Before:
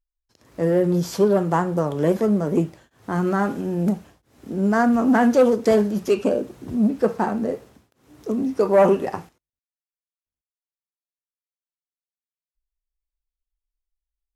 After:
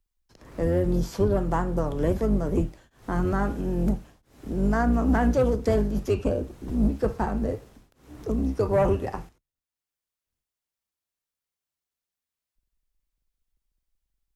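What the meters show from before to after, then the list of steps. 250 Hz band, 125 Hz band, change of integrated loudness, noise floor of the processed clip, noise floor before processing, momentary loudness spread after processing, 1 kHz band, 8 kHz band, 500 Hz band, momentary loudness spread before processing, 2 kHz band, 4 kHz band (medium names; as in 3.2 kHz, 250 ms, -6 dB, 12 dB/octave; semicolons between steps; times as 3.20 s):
-5.5 dB, 0.0 dB, -5.0 dB, under -85 dBFS, under -85 dBFS, 11 LU, -6.0 dB, no reading, -6.5 dB, 12 LU, -6.0 dB, -7.0 dB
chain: octave divider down 2 oct, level +1 dB; three bands compressed up and down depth 40%; trim -6 dB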